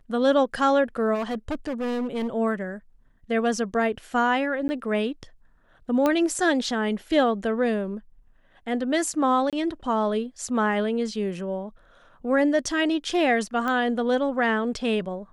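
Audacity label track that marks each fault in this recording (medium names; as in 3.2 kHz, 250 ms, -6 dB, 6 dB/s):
1.140000	2.280000	clipped -24 dBFS
4.680000	4.690000	dropout 10 ms
6.060000	6.060000	pop -10 dBFS
9.500000	9.530000	dropout 27 ms
13.680000	13.680000	pop -16 dBFS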